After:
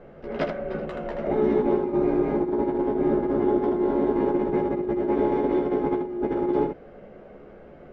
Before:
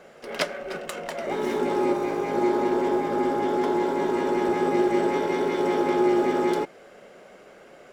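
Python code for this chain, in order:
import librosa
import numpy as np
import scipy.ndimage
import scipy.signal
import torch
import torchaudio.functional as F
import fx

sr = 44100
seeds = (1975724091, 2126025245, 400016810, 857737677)

y = scipy.signal.sosfilt(scipy.signal.butter(2, 3900.0, 'lowpass', fs=sr, output='sos'), x)
y = fx.tilt_eq(y, sr, slope=-4.5)
y = fx.over_compress(y, sr, threshold_db=-19.0, ratio=-0.5)
y = fx.room_early_taps(y, sr, ms=(14, 79), db=(-3.5, -5.5))
y = F.gain(torch.from_numpy(y), -6.0).numpy()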